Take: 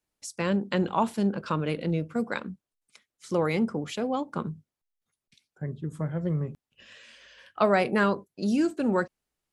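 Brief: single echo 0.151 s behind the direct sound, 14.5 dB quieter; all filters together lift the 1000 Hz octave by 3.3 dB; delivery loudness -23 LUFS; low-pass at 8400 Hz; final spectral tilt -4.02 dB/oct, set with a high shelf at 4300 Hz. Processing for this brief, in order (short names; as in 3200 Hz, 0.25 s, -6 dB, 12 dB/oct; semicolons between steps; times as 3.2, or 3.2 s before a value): LPF 8400 Hz; bell 1000 Hz +4.5 dB; high shelf 4300 Hz -7 dB; echo 0.151 s -14.5 dB; gain +4 dB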